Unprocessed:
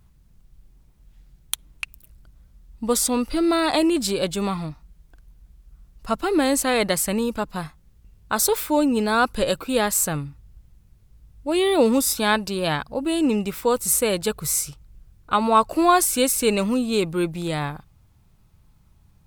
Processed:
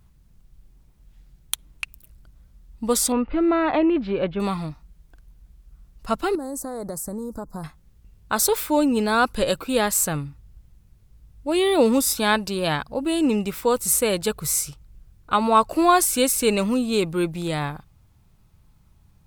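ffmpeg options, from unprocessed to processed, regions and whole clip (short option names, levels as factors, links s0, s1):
-filter_complex "[0:a]asettb=1/sr,asplit=3[s0][s1][s2];[s0]atrim=end=3.124[s3];[s1]atrim=start=3.12:end=4.4,asetpts=PTS-STARTPTS,afade=t=in:d=0.004:c=qsin,afade=t=out:st=1.276:d=0.004:c=qsin,lowpass=f=2700:w=0.5412,lowpass=f=2700:w=1.3066,aemphasis=mode=reproduction:type=50fm[s4];[s2]atrim=start=4.396[s5];[s3][s4]acrossfade=d=0.004:c1=hsin:c2=qsin[s6];[s6][s5]acrossfade=d=0.004:c1=qsin:c2=hsin,asettb=1/sr,asplit=3[s7][s8][s9];[s7]atrim=end=6.354[s10];[s8]atrim=start=6.35:end=7.64,asetpts=PTS-STARTPTS,afade=t=in:d=0.004:c=qsin,afade=t=out:st=1.286:d=0.004:c=qsin,equalizer=f=2100:t=o:w=2.1:g=-6,acompressor=threshold=0.0447:ratio=6:attack=3.2:release=140:knee=1:detection=peak,asuperstop=centerf=2800:order=4:qfactor=0.66[s11];[s9]atrim=start=7.636[s12];[s10][s11]acrossfade=d=0.004:c1=hsin:c2=qsin[s13];[s13][s12]acrossfade=d=0.004:c1=qsin:c2=hsin"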